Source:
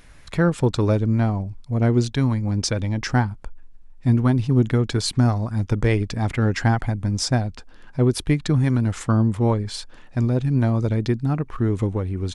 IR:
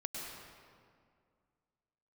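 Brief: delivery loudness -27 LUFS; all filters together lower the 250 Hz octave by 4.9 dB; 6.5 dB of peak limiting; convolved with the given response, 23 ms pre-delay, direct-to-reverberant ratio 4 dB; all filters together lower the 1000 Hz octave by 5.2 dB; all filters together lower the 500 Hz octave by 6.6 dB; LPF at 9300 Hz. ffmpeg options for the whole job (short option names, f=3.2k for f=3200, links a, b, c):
-filter_complex "[0:a]lowpass=9.3k,equalizer=f=250:t=o:g=-4.5,equalizer=f=500:t=o:g=-6,equalizer=f=1k:t=o:g=-4.5,alimiter=limit=-15.5dB:level=0:latency=1,asplit=2[a][b];[1:a]atrim=start_sample=2205,adelay=23[c];[b][c]afir=irnorm=-1:irlink=0,volume=-4.5dB[d];[a][d]amix=inputs=2:normalize=0,volume=-2dB"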